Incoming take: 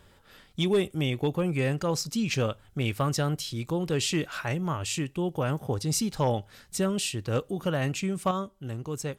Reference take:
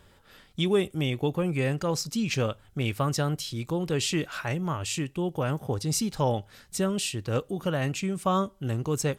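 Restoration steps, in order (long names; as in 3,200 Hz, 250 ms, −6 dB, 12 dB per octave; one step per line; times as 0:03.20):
clipped peaks rebuilt −17 dBFS
level 0 dB, from 0:08.31 +6 dB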